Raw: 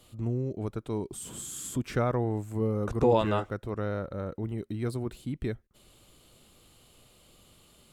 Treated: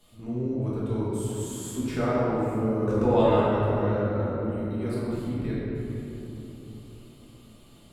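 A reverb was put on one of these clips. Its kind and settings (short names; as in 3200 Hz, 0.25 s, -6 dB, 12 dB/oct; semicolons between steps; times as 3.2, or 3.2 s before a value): shoebox room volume 200 m³, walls hard, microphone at 1.4 m; gain -6.5 dB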